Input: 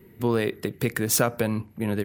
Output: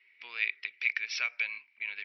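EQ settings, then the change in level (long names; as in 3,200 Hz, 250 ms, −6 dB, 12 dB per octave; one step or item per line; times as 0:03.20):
high-pass with resonance 2,300 Hz, resonance Q 10
Chebyshev low-pass filter 5,700 Hz, order 10
−7.5 dB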